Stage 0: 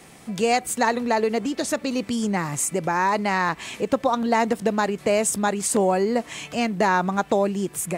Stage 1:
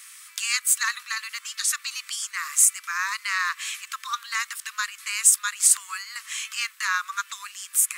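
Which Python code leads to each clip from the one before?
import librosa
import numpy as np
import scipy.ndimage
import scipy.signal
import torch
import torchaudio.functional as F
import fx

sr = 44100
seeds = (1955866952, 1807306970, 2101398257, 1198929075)

y = scipy.signal.sosfilt(scipy.signal.butter(16, 1100.0, 'highpass', fs=sr, output='sos'), x)
y = fx.high_shelf(y, sr, hz=5300.0, db=11.0)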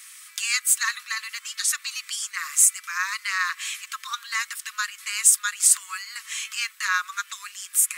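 y = scipy.signal.sosfilt(scipy.signal.butter(2, 1000.0, 'highpass', fs=sr, output='sos'), x)
y = y + 0.38 * np.pad(y, (int(5.5 * sr / 1000.0), 0))[:len(y)]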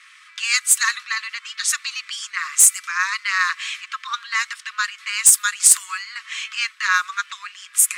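y = fx.env_lowpass(x, sr, base_hz=2600.0, full_db=-16.0)
y = 10.0 ** (-7.5 / 20.0) * (np.abs((y / 10.0 ** (-7.5 / 20.0) + 3.0) % 4.0 - 2.0) - 1.0)
y = y * librosa.db_to_amplitude(5.5)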